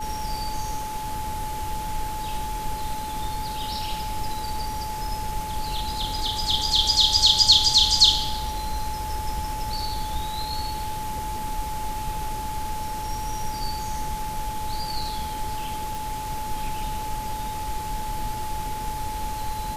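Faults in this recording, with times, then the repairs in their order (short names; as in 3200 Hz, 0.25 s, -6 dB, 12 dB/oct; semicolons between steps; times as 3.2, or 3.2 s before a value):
tone 860 Hz -30 dBFS
15.95 pop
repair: de-click; notch 860 Hz, Q 30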